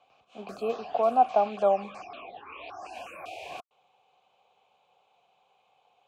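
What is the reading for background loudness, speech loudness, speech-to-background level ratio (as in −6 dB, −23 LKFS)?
−43.0 LKFS, −26.0 LKFS, 17.0 dB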